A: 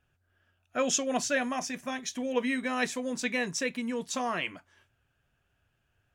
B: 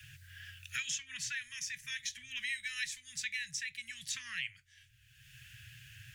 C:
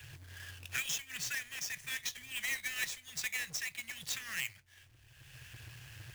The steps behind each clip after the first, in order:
Chebyshev band-stop 130–1800 Hz, order 4; low shelf 100 Hz +6.5 dB; three-band squash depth 100%; gain -3.5 dB
half-waves squared off; gain -2 dB

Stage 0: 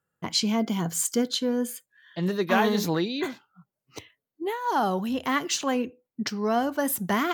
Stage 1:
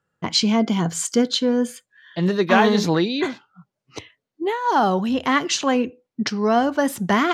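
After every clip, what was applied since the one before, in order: LPF 6400 Hz 12 dB/oct; gain +6.5 dB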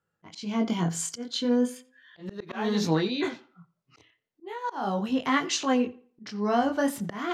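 chorus 0.37 Hz, delay 18.5 ms, depth 6.7 ms; auto swell 0.294 s; tape echo 87 ms, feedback 31%, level -19 dB, low-pass 3800 Hz; gain -3 dB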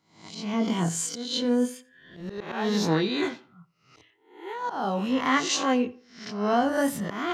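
spectral swells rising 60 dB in 0.50 s

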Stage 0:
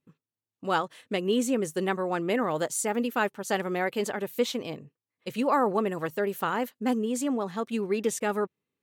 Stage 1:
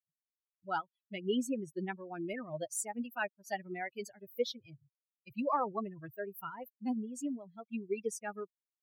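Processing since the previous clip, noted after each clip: per-bin expansion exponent 3; gain -3 dB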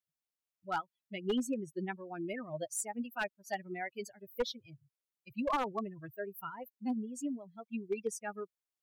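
one-sided fold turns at -26.5 dBFS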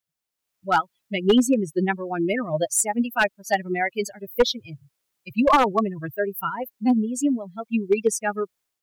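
AGC gain up to 9.5 dB; gain +6 dB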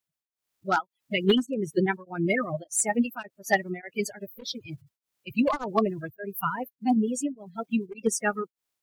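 bin magnitudes rounded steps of 30 dB; beating tremolo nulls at 1.7 Hz

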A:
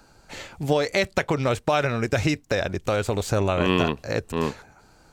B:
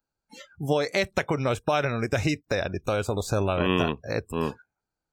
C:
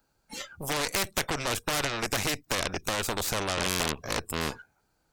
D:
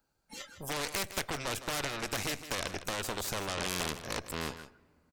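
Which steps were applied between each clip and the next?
spectral noise reduction 30 dB; gain -2.5 dB
added harmonics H 5 -16 dB, 6 -8 dB, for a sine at -11.5 dBFS; spectral compressor 2:1
echo 0.159 s -12.5 dB; on a send at -22 dB: reverb RT60 2.4 s, pre-delay 7 ms; on the sum: gain -6 dB

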